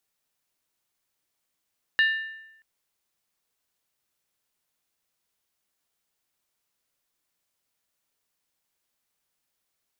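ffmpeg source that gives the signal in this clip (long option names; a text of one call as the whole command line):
ffmpeg -f lavfi -i "aevalsrc='0.158*pow(10,-3*t/0.9)*sin(2*PI*1780*t)+0.0596*pow(10,-3*t/0.713)*sin(2*PI*2837.3*t)+0.0224*pow(10,-3*t/0.616)*sin(2*PI*3802.1*t)+0.00841*pow(10,-3*t/0.594)*sin(2*PI*4086.9*t)+0.00316*pow(10,-3*t/0.553)*sin(2*PI*4722.3*t)':duration=0.63:sample_rate=44100" out.wav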